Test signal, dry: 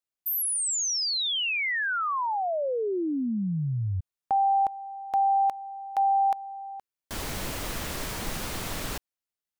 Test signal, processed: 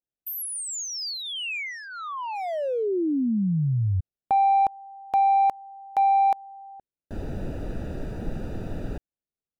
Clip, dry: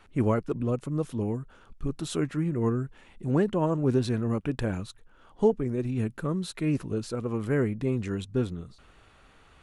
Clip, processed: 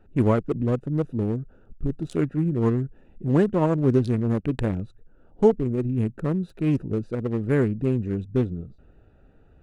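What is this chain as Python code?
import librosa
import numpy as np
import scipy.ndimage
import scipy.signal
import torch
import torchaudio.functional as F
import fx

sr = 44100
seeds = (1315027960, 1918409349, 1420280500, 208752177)

y = fx.wiener(x, sr, points=41)
y = F.gain(torch.from_numpy(y), 5.0).numpy()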